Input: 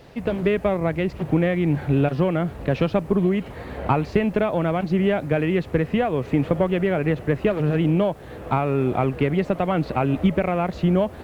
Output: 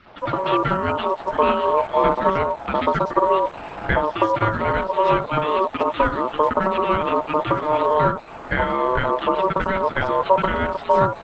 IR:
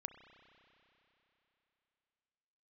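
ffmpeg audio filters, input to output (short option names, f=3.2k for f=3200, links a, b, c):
-filter_complex "[0:a]acrossover=split=530|3900[a][b][c];[a]adelay=60[d];[c]adelay=180[e];[d][b][e]amix=inputs=3:normalize=0,aeval=exprs='val(0)*sin(2*PI*760*n/s)':c=same,volume=6dB" -ar 48000 -c:a libopus -b:a 12k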